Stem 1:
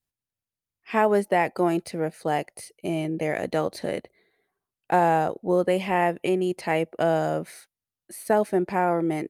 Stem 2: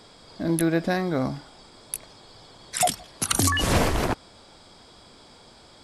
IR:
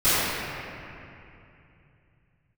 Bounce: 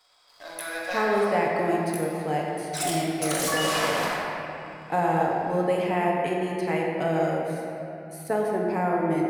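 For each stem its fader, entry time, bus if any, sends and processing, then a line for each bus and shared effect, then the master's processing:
-6.0 dB, 0.00 s, send -18 dB, none
-11.0 dB, 0.00 s, send -14.5 dB, high-pass 690 Hz 24 dB/octave; waveshaping leveller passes 2; saturation -15.5 dBFS, distortion -14 dB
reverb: on, RT60 2.7 s, pre-delay 3 ms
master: none

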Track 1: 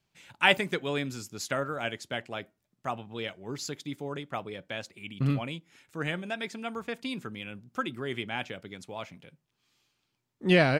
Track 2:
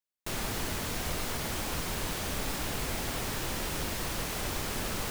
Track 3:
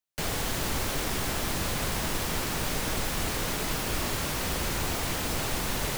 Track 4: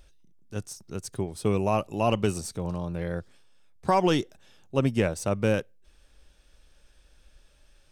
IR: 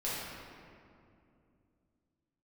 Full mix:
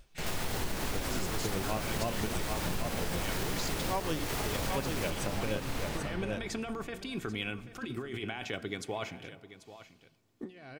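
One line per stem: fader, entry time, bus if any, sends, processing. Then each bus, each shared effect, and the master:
-1.0 dB, 0.00 s, send -22 dB, echo send -14.5 dB, comb 2.7 ms, depth 38%; compressor with a negative ratio -39 dBFS, ratio -1
+2.5 dB, 0.00 s, send -7.5 dB, echo send -6.5 dB, peak limiter -29 dBFS, peak gain reduction 8 dB
-3.5 dB, 0.00 s, send -7.5 dB, no echo send, treble shelf 8.6 kHz -8.5 dB; auto duck -12 dB, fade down 0.35 s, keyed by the fourth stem
-1.0 dB, 0.00 s, no send, echo send -7 dB, tremolo 6.3 Hz, depth 79%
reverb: on, RT60 2.5 s, pre-delay 6 ms
echo: delay 788 ms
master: compression, threshold -29 dBFS, peak gain reduction 10.5 dB

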